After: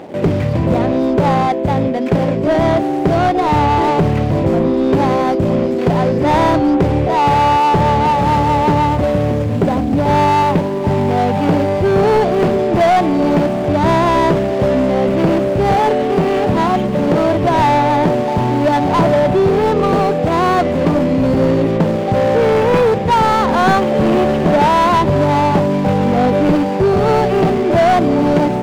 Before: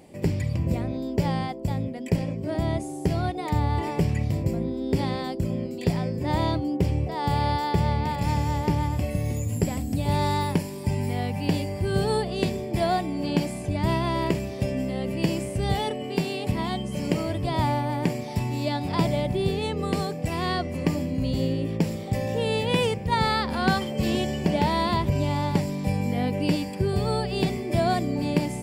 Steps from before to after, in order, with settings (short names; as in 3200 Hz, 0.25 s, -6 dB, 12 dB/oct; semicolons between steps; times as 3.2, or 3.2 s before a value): median filter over 25 samples; overdrive pedal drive 26 dB, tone 2000 Hz, clips at -9.5 dBFS; gain +6 dB